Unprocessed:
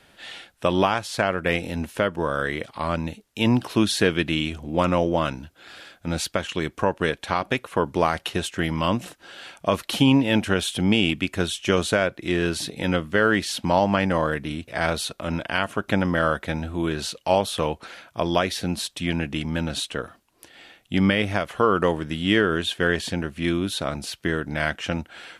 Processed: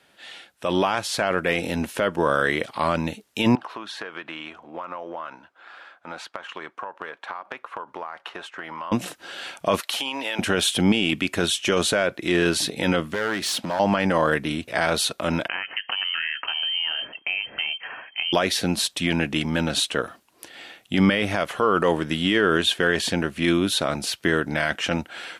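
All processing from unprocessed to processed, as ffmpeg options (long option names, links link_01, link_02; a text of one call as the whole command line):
ffmpeg -i in.wav -filter_complex "[0:a]asettb=1/sr,asplit=3[link_01][link_02][link_03];[link_01]atrim=end=3.554[link_04];[link_02]atrim=start=3.55:end=8.92,asetpts=PTS-STARTPTS,afade=type=in:duration=0.004:curve=qsin,afade=type=out:start_time=5.366:duration=0.004:curve=qsin,bandpass=frequency=1100:width_type=q:width=1.8,acompressor=threshold=-34dB:ratio=10:attack=3.2:release=140:knee=1:detection=peak[link_05];[link_03]atrim=start=8.916[link_06];[link_04][link_05]acrossfade=duration=0.004:curve1=hsin:curve2=qsin[link_07];[link_07][link_06]acrossfade=duration=0.004:curve1=qsin:curve2=hsin,asettb=1/sr,asplit=3[link_08][link_09][link_10];[link_08]atrim=end=9.804[link_11];[link_09]atrim=start=9.8:end=10.39,asetpts=PTS-STARTPTS,afade=type=in:duration=0.004:curve=qsin,afade=type=out:start_time=0.586:duration=0.004:curve=qsin,highpass=710,acompressor=threshold=-28dB:ratio=10:attack=3.2:release=140:knee=1:detection=peak[link_12];[link_10]atrim=start=10.386[link_13];[link_11][link_12]acrossfade=duration=0.004:curve1=hsin:curve2=qsin[link_14];[link_14][link_13]acrossfade=duration=0.004:curve1=qsin:curve2=hsin,asettb=1/sr,asplit=3[link_15][link_16][link_17];[link_15]atrim=end=13.144[link_18];[link_16]atrim=start=13.14:end=13.8,asetpts=PTS-STARTPTS,afade=type=in:duration=0.004:curve=qsin,afade=type=out:start_time=0.656:duration=0.004:curve=qsin,acompressor=threshold=-26dB:ratio=2.5:attack=3.2:release=140:knee=1:detection=peak,aeval=exprs='clip(val(0),-1,0.0355)':channel_layout=same,highpass=81[link_19];[link_17]atrim=start=13.796[link_20];[link_18][link_19]acrossfade=duration=0.004:curve1=hsin:curve2=qsin[link_21];[link_21][link_20]acrossfade=duration=0.004:curve1=qsin:curve2=hsin,asettb=1/sr,asplit=3[link_22][link_23][link_24];[link_22]atrim=end=15.484[link_25];[link_23]atrim=start=15.48:end=18.33,asetpts=PTS-STARTPTS,afade=type=in:duration=0.004:curve=qsin,afade=type=out:start_time=2.846:duration=0.004:curve=qsin,asubboost=boost=11:cutoff=70,acompressor=threshold=-29dB:ratio=6:attack=3.2:release=140:knee=1:detection=peak,lowpass=frequency=2700:width_type=q:width=0.5098,lowpass=frequency=2700:width_type=q:width=0.6013,lowpass=frequency=2700:width_type=q:width=0.9,lowpass=frequency=2700:width_type=q:width=2.563,afreqshift=-3200[link_26];[link_24]atrim=start=18.326[link_27];[link_25][link_26]acrossfade=duration=0.004:curve1=hsin:curve2=qsin[link_28];[link_28][link_27]acrossfade=duration=0.004:curve1=qsin:curve2=hsin,highpass=frequency=220:poles=1,alimiter=limit=-14.5dB:level=0:latency=1:release=14,dynaudnorm=framelen=470:gausssize=3:maxgain=9.5dB,volume=-3.5dB" out.wav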